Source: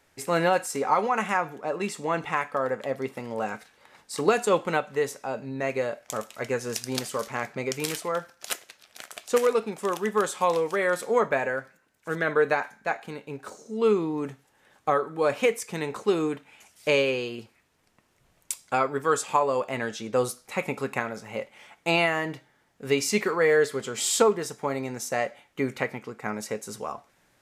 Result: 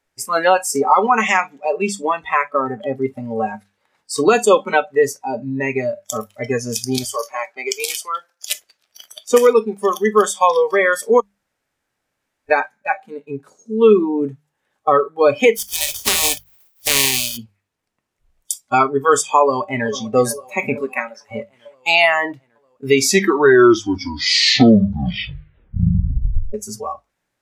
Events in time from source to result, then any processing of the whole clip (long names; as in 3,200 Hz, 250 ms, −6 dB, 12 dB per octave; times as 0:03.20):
0:01.23–0:01.72: gain on a spectral selection 1,800–8,000 Hz +7 dB
0:07.04–0:08.50: high-pass filter 460 Hz
0:11.20–0:12.49: fill with room tone
0:15.55–0:17.36: compressing power law on the bin magnitudes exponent 0.2
0:19.40–0:19.88: delay throw 450 ms, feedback 75%, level −9 dB
0:20.81–0:21.30: high-pass filter 380 Hz → 1,400 Hz 6 dB per octave
0:22.90: tape stop 3.64 s
whole clip: noise reduction from a noise print of the clip's start 22 dB; mains-hum notches 50/100/150/200 Hz; boost into a limiter +12.5 dB; level −1 dB